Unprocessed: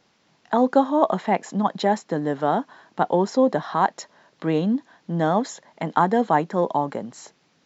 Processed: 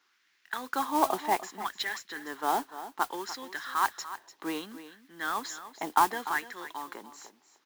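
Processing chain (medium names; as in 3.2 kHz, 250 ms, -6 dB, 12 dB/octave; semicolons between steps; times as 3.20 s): dynamic bell 4.5 kHz, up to +6 dB, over -42 dBFS, Q 0.75; LFO high-pass sine 0.65 Hz 740–1800 Hz; resonant low shelf 450 Hz +9 dB, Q 3; modulation noise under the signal 14 dB; on a send: delay 295 ms -13.5 dB; on the sum: trim -7.5 dB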